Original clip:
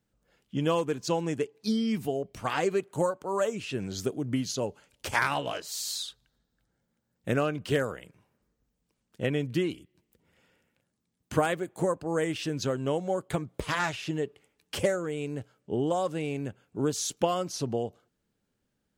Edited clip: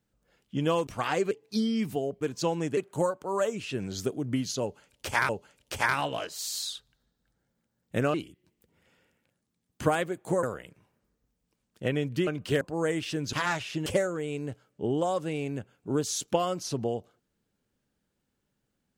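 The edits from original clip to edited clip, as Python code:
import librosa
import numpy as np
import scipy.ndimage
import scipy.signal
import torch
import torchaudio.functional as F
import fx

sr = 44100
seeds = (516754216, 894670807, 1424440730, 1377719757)

y = fx.edit(x, sr, fx.swap(start_s=0.87, length_s=0.56, other_s=2.33, other_length_s=0.44),
    fx.repeat(start_s=4.62, length_s=0.67, count=2),
    fx.swap(start_s=7.47, length_s=0.34, other_s=9.65, other_length_s=2.29),
    fx.cut(start_s=12.66, length_s=1.0),
    fx.cut(start_s=14.19, length_s=0.56), tone=tone)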